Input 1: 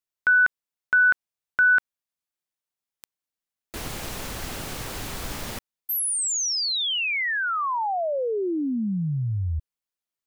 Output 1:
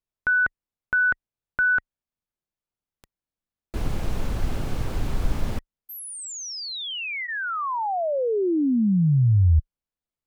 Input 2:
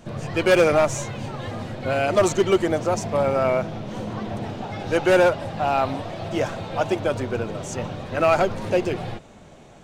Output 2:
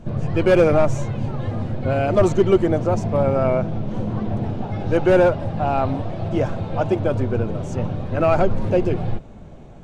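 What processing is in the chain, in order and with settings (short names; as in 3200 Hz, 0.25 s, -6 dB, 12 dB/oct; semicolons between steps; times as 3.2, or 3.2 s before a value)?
tilt -3 dB/oct; notch 1900 Hz, Q 29; gain -1 dB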